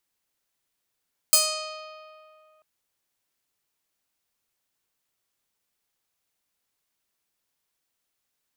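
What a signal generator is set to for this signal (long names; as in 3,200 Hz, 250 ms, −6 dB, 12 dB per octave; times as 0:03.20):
Karplus-Strong string D#5, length 1.29 s, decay 2.49 s, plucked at 0.34, bright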